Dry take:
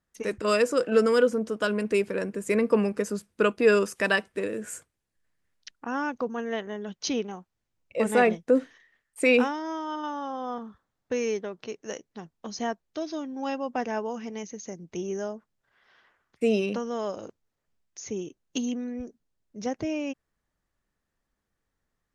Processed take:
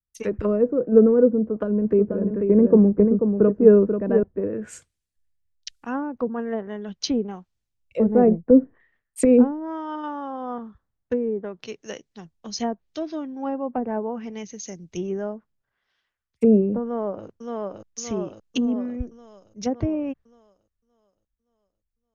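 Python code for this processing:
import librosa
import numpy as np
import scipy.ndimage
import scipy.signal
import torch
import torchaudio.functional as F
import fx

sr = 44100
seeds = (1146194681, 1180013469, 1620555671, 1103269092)

y = fx.echo_single(x, sr, ms=488, db=-4.5, at=(1.45, 4.23))
y = fx.echo_throw(y, sr, start_s=16.83, length_s=0.42, ms=570, feedback_pct=65, wet_db=-2.0)
y = fx.env_lowpass_down(y, sr, base_hz=440.0, full_db=-23.5)
y = fx.low_shelf(y, sr, hz=140.0, db=12.0)
y = fx.band_widen(y, sr, depth_pct=70)
y = y * librosa.db_to_amplitude(4.0)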